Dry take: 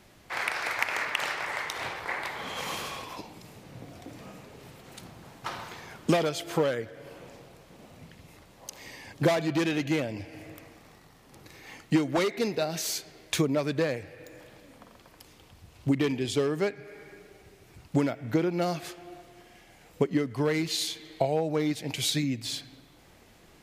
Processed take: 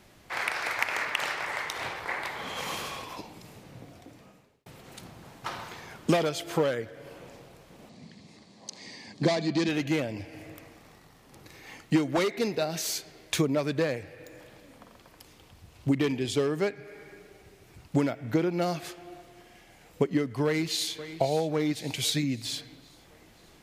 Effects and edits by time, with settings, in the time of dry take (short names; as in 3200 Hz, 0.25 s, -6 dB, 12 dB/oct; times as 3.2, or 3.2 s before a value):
3.57–4.66 fade out linear
7.89–9.69 speaker cabinet 140–8200 Hz, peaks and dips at 210 Hz +10 dB, 540 Hz -4 dB, 890 Hz -3 dB, 1400 Hz -10 dB, 2800 Hz -5 dB, 4400 Hz +8 dB
20.45–21.13 echo throw 0.53 s, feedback 55%, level -13 dB